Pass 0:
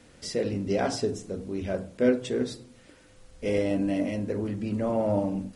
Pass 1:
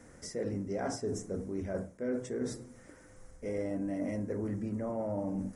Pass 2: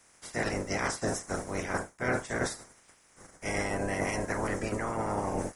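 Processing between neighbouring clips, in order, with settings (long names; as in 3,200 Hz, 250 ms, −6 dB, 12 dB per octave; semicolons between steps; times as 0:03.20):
flat-topped bell 3,400 Hz −14 dB 1.1 octaves; reversed playback; downward compressor 6 to 1, threshold −32 dBFS, peak gain reduction 14 dB; reversed playback
ceiling on every frequency bin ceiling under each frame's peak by 27 dB; expander for the loud parts 1.5 to 1, over −55 dBFS; level +5.5 dB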